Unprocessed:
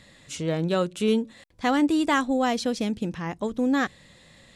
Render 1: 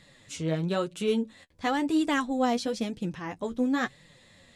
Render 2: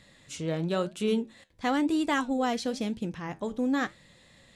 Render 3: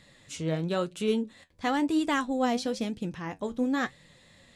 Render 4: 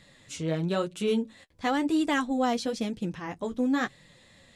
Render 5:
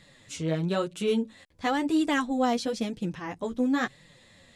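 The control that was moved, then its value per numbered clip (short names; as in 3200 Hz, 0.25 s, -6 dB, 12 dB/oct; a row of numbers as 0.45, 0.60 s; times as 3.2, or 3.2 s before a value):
flange, regen: +24, -78, +61, -25, +1%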